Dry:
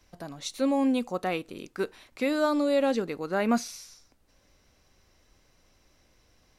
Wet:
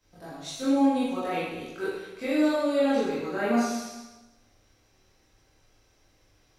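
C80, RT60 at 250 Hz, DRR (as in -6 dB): 1.5 dB, 1.1 s, -10.5 dB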